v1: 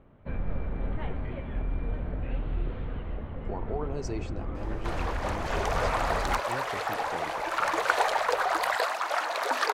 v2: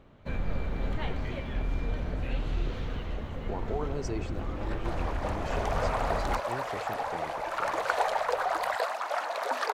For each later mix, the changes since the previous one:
first sound: remove high-frequency loss of the air 490 metres
second sound: add Chebyshev high-pass with heavy ripple 160 Hz, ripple 6 dB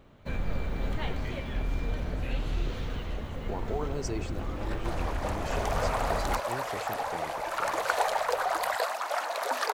master: remove low-pass filter 3,800 Hz 6 dB per octave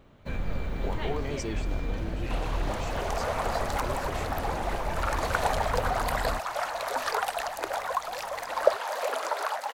speech: entry −2.65 s
second sound: entry −2.55 s

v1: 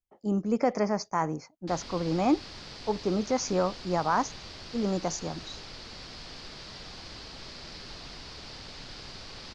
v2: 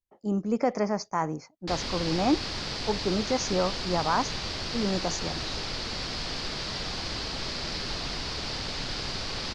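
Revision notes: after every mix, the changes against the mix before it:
background +10.5 dB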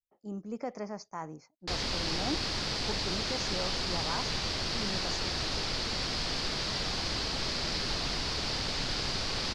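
speech −11.5 dB
master: add high-shelf EQ 12,000 Hz +9.5 dB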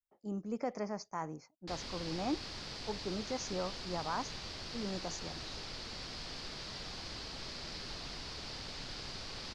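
background −11.5 dB

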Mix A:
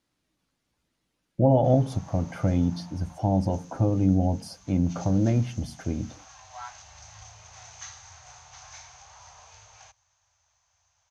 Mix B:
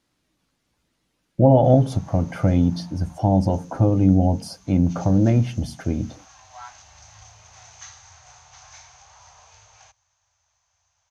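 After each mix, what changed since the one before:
speech +5.5 dB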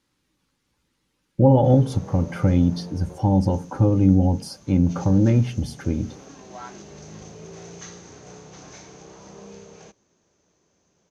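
speech: add Butterworth band-reject 670 Hz, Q 4.5
background: remove Chebyshev band-stop filter 100–770 Hz, order 3

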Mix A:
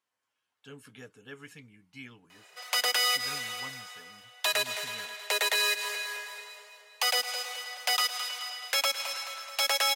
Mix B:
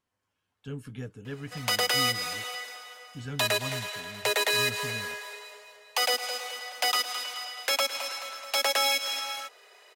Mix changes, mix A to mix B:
background: entry −1.05 s
master: remove high-pass filter 840 Hz 6 dB per octave

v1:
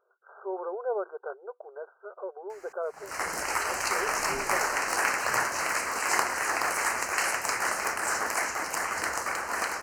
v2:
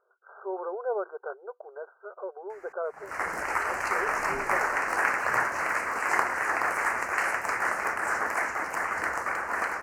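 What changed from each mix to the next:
master: add high shelf with overshoot 2,600 Hz −9.5 dB, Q 1.5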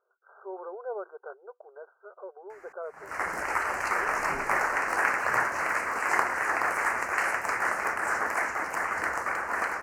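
speech −5.5 dB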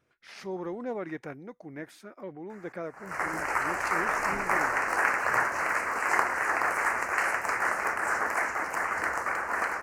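speech: remove linear-phase brick-wall band-pass 370–1,600 Hz

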